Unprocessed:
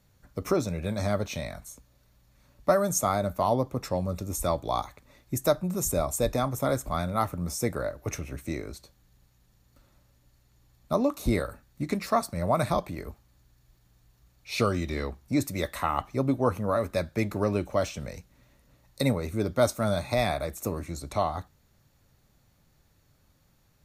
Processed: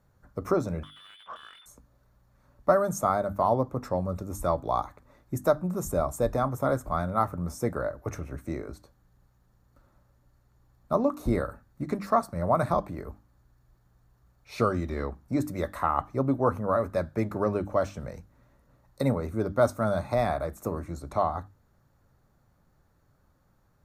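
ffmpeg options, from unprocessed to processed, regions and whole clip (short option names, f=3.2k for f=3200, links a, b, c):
-filter_complex "[0:a]asettb=1/sr,asplit=3[a][b][c];[a]atrim=end=0.834[d];[b]atrim=start=0.83:end=1.66,asetpts=PTS-STARTPTS,afade=t=in:d=0.004:c=qsin,afade=t=out:st=0.826:d=0.004:c=qsin,lowpass=f=3.1k:t=q:w=0.5098,lowpass=f=3.1k:t=q:w=0.6013,lowpass=f=3.1k:t=q:w=0.9,lowpass=f=3.1k:t=q:w=2.563,afreqshift=-3600,acompressor=threshold=-40dB:ratio=10:attack=3.2:release=140:knee=1:detection=peak,asplit=2[e][f];[f]highpass=f=720:p=1,volume=18dB,asoftclip=type=tanh:threshold=-33dB[g];[e][g]amix=inputs=2:normalize=0,lowpass=f=2.8k:p=1,volume=-6dB[h];[c]atrim=start=1.656[i];[d][h]acrossfade=d=0.004:c1=hsin:c2=qsin[j];[j][i]acrossfade=d=0.004:c1=qsin:c2=hsin,highshelf=f=1.9k:t=q:w=1.5:g=-9,bandreject=f=50:t=h:w=6,bandreject=f=100:t=h:w=6,bandreject=f=150:t=h:w=6,bandreject=f=200:t=h:w=6,bandreject=f=250:t=h:w=6,bandreject=f=300:t=h:w=6"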